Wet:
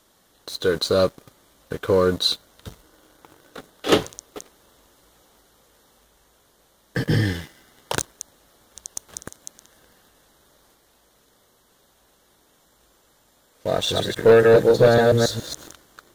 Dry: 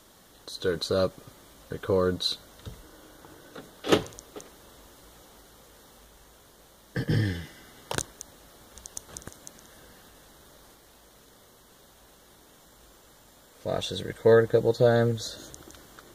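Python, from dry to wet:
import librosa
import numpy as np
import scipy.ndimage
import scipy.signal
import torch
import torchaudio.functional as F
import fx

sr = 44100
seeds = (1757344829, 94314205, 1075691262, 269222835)

y = fx.reverse_delay(x, sr, ms=139, wet_db=-1.5, at=(13.73, 15.73))
y = fx.low_shelf(y, sr, hz=240.0, db=-3.5)
y = fx.leveller(y, sr, passes=2)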